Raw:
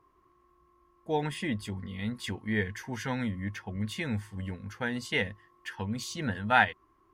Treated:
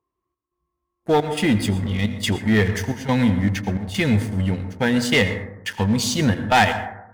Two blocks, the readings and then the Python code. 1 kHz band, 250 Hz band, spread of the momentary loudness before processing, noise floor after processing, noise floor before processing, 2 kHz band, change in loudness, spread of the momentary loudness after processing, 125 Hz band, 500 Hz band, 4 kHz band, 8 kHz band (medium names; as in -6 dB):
+9.0 dB, +14.0 dB, 13 LU, -81 dBFS, -66 dBFS, +7.5 dB, +11.5 dB, 8 LU, +14.0 dB, +12.5 dB, +13.0 dB, +14.5 dB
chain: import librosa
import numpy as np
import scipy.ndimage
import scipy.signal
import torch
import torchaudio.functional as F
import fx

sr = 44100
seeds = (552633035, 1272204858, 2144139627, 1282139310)

y = scipy.signal.sosfilt(scipy.signal.butter(2, 41.0, 'highpass', fs=sr, output='sos'), x)
y = fx.noise_reduce_blind(y, sr, reduce_db=11)
y = fx.peak_eq(y, sr, hz=1400.0, db=-7.5, octaves=0.81)
y = fx.leveller(y, sr, passes=3)
y = fx.step_gate(y, sr, bpm=175, pattern='xxxx..xxxx', floor_db=-12.0, edge_ms=4.5)
y = y + 10.0 ** (-20.0 / 20.0) * np.pad(y, (int(86 * sr / 1000.0), 0))[:len(y)]
y = fx.rev_plate(y, sr, seeds[0], rt60_s=0.84, hf_ratio=0.25, predelay_ms=100, drr_db=10.0)
y = y * 10.0 ** (4.0 / 20.0)